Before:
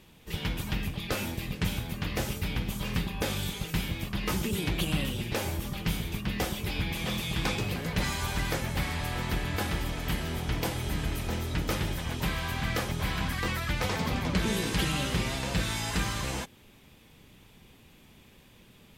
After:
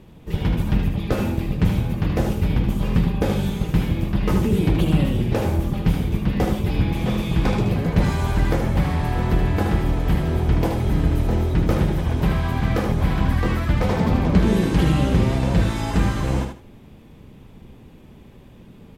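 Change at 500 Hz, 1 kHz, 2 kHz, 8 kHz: +10.5, +7.5, +1.5, −3.5 decibels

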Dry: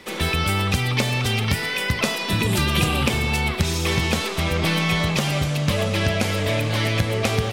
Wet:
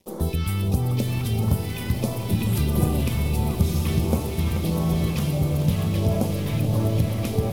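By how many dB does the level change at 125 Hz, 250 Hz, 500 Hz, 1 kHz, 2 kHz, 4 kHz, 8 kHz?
+1.0, +0.5, −4.0, −8.0, −15.5, −12.5, −7.0 decibels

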